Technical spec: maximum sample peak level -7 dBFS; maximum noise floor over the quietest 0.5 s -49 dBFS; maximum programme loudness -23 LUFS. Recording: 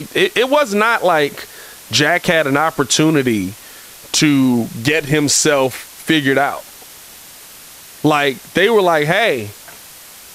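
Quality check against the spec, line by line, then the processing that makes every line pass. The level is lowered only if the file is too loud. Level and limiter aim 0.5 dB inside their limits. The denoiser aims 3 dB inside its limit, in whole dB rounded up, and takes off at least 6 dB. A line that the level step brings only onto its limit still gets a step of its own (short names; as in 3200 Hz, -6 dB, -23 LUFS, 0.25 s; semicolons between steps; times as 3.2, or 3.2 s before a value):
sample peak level -2.5 dBFS: fail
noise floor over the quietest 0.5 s -38 dBFS: fail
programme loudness -14.5 LUFS: fail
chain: denoiser 6 dB, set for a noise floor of -38 dBFS; gain -9 dB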